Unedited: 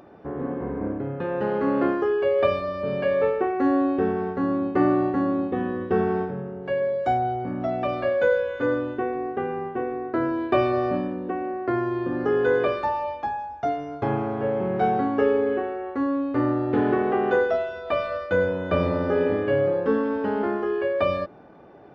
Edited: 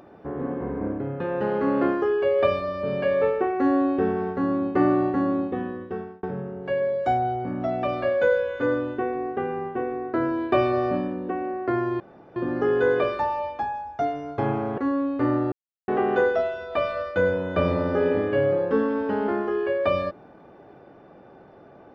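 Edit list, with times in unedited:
5.36–6.23 fade out
12 insert room tone 0.36 s
14.42–15.93 cut
16.67–17.03 mute

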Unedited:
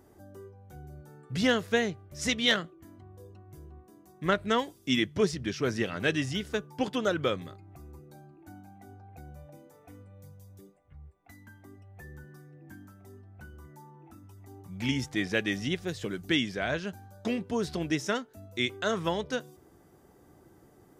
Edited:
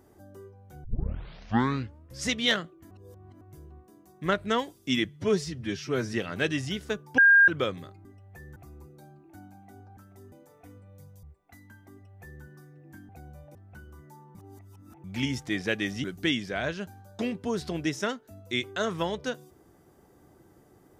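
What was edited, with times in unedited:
0.84 tape start 1.45 s
2.91–3.41 reverse
5.05–5.77 stretch 1.5×
6.82–7.12 bleep 1610 Hz -13.5 dBFS
9.1–9.56 swap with 12.86–13.21
10.47–11 cut
11.69–12.2 copy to 7.69
14.01–14.7 reverse
15.7–16.1 cut

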